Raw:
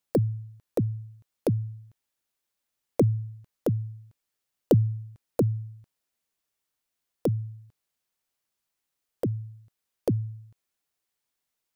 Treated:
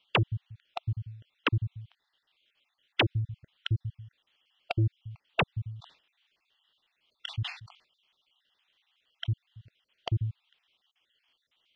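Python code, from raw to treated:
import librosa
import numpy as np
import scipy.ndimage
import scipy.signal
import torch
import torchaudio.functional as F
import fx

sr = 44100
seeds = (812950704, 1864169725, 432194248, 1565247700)

y = fx.spec_dropout(x, sr, seeds[0], share_pct=46)
y = fx.low_shelf(y, sr, hz=370.0, db=-8.0)
y = fx.fold_sine(y, sr, drive_db=11, ceiling_db=-18.0)
y = fx.ladder_lowpass(y, sr, hz=3400.0, resonance_pct=70)
y = fx.sustainer(y, sr, db_per_s=130.0, at=(5.7, 9.25), fade=0.02)
y = y * 10.0 ** (8.5 / 20.0)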